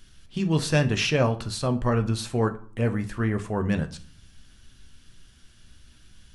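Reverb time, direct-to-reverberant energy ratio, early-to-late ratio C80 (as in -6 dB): 0.50 s, 6.5 dB, 20.0 dB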